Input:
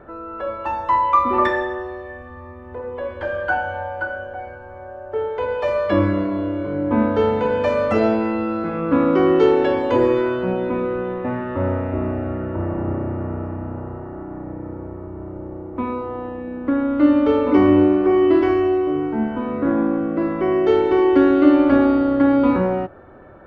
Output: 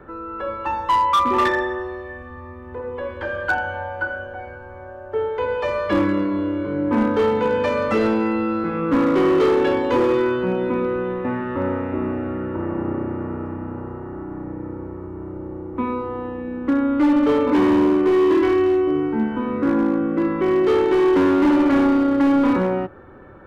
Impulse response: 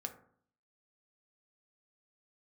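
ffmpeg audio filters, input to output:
-filter_complex "[0:a]equalizer=f=660:w=5.6:g=-13,acrossover=split=160|2100[a][b][c];[a]acompressor=threshold=-38dB:ratio=6[d];[d][b][c]amix=inputs=3:normalize=0,asoftclip=type=hard:threshold=-14.5dB,volume=1.5dB"

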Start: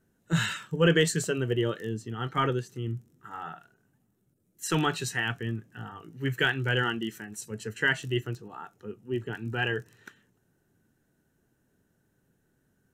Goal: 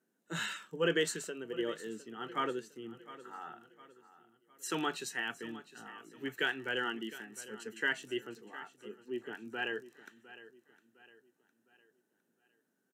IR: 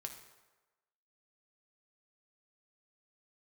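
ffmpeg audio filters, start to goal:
-filter_complex "[0:a]highpass=f=220:w=0.5412,highpass=f=220:w=1.3066,asettb=1/sr,asplit=3[a][b][c];[a]atrim=end=1.164[d];[b]atrim=start=1.16:end=1.59,asetpts=PTS-STARTPTS,afade=t=in:d=0.004:c=qsin,afade=t=out:st=0.426:d=0.004:c=qsin,acompressor=threshold=-32dB:ratio=4[e];[c]atrim=start=1.586[f];[d][e]acrossfade=d=0.004:c1=hsin:c2=qsin[g];[g][f]acrossfade=d=0.004:c1=qsin:c2=hsin,aecho=1:1:708|1416|2124|2832:0.15|0.0613|0.0252|0.0103,volume=-7dB"

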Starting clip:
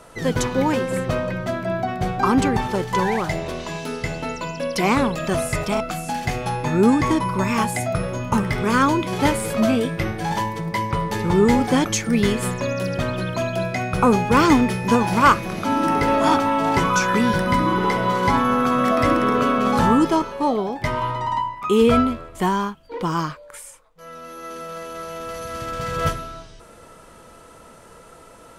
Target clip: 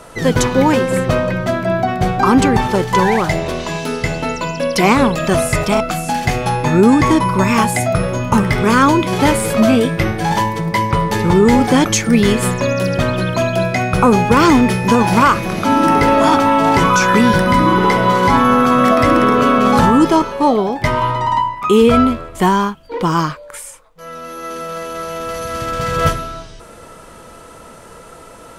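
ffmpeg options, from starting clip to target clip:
-af "alimiter=level_in=8.5dB:limit=-1dB:release=50:level=0:latency=1,volume=-1dB"

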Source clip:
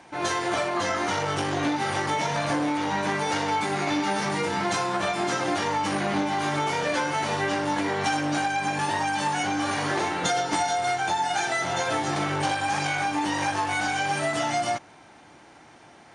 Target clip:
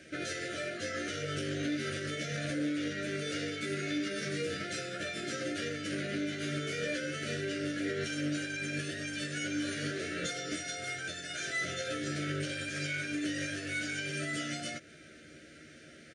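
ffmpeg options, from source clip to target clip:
-filter_complex "[0:a]alimiter=level_in=0.5dB:limit=-24dB:level=0:latency=1:release=201,volume=-0.5dB,asuperstop=centerf=920:order=8:qfactor=1.2,asplit=2[a][b];[b]adelay=13,volume=-5dB[c];[a][c]amix=inputs=2:normalize=0,volume=-1.5dB"

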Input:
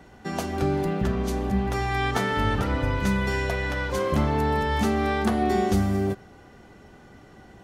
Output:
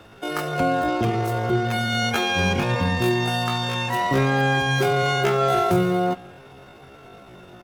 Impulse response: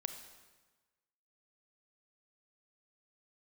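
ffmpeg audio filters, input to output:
-filter_complex "[0:a]asplit=2[a][b];[b]adelay=1574,volume=-29dB,highshelf=f=4k:g=-35.4[c];[a][c]amix=inputs=2:normalize=0,asplit=2[d][e];[1:a]atrim=start_sample=2205,asetrate=61740,aresample=44100,lowpass=3.1k[f];[e][f]afir=irnorm=-1:irlink=0,volume=-3dB[g];[d][g]amix=inputs=2:normalize=0,asetrate=80880,aresample=44100,atempo=0.545254,aeval=exprs='clip(val(0),-1,0.211)':c=same"

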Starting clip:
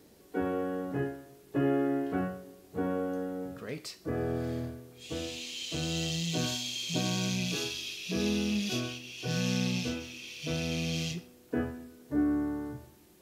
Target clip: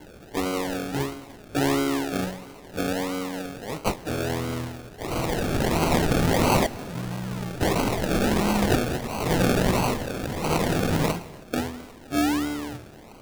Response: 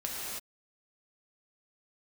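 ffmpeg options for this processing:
-filter_complex "[0:a]aexciter=amount=3.2:drive=6.3:freq=2.4k,asettb=1/sr,asplit=3[a][b][c];[a]atrim=end=6.664[d];[b]atrim=start=6.66:end=7.61,asetpts=PTS-STARTPTS,afade=t=in:d=0.004:c=qsin,afade=t=out:st=0.946:d=0.004:c=qsin,acrossover=split=190[e][f];[f]acompressor=threshold=-41dB:ratio=6[g];[e][g]amix=inputs=2:normalize=0[h];[c]atrim=start=7.606[i];[d][h]acrossfade=d=0.004:c1=hsin:c2=qsin[j];[j][i]acrossfade=d=0.004:c1=qsin:c2=hsin,acrusher=samples=35:mix=1:aa=0.000001:lfo=1:lforange=21:lforate=1.5,asplit=2[k][l];[1:a]atrim=start_sample=2205[m];[l][m]afir=irnorm=-1:irlink=0,volume=-21.5dB[n];[k][n]amix=inputs=2:normalize=0,volume=4dB"

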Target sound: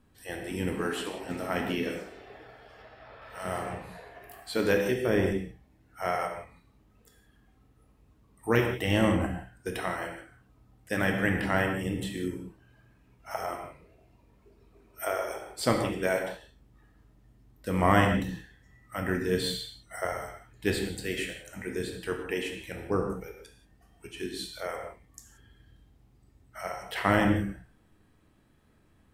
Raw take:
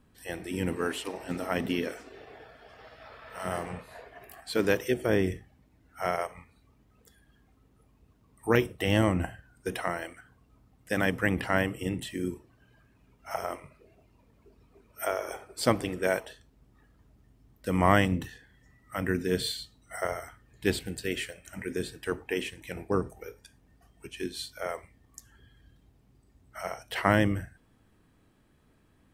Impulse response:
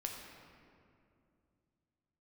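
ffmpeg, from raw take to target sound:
-filter_complex "[0:a]asettb=1/sr,asplit=3[a][b][c];[a]atrim=end=2.824[d];[b]atrim=start=2.82:end=3.22,asetpts=PTS-STARTPTS,afade=t=in:d=0.004:c=qsin,afade=t=out:st=0.396:d=0.004:c=qsin,highshelf=f=3.6k:g=-9[e];[c]atrim=start=3.216[f];[d][e]acrossfade=d=0.004:c1=hsin:c2=qsin[g];[g][f]acrossfade=d=0.004:c1=qsin:c2=hsin[h];[1:a]atrim=start_sample=2205,afade=t=out:st=0.19:d=0.01,atrim=end_sample=8820,asetrate=33075,aresample=44100[i];[h][i]afir=irnorm=-1:irlink=0"

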